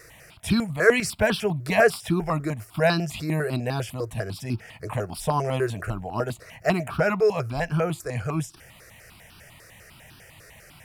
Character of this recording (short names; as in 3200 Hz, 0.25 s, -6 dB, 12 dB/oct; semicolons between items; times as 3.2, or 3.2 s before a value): notches that jump at a steady rate 10 Hz 850–2000 Hz